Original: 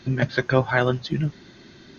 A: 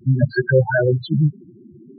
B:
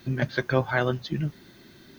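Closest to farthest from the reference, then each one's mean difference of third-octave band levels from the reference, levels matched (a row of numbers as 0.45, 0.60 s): B, A; 1.5, 12.5 dB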